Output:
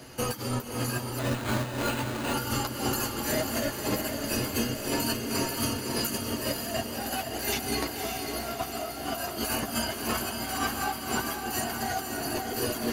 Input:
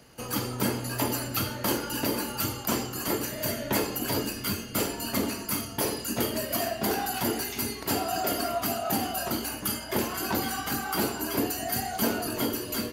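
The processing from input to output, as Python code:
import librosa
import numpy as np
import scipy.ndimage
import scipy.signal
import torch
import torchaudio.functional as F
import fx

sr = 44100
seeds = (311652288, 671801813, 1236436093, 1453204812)

y = fx.over_compress(x, sr, threshold_db=-35.0, ratio=-0.5)
y = fx.chorus_voices(y, sr, voices=6, hz=0.16, base_ms=11, depth_ms=3.5, mix_pct=40)
y = fx.echo_diffused(y, sr, ms=567, feedback_pct=52, wet_db=-4.5)
y = fx.resample_bad(y, sr, factor=8, down='none', up='hold', at=(1.19, 2.34))
y = F.gain(torch.from_numpy(y), 5.5).numpy()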